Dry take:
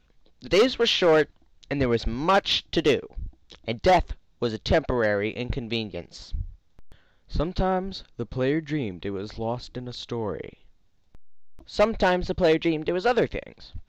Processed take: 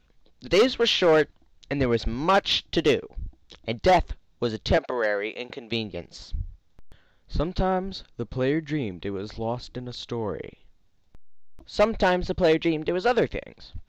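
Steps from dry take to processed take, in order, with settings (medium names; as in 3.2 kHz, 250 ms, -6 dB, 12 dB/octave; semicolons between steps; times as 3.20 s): 4.77–5.72 s: high-pass 410 Hz 12 dB/octave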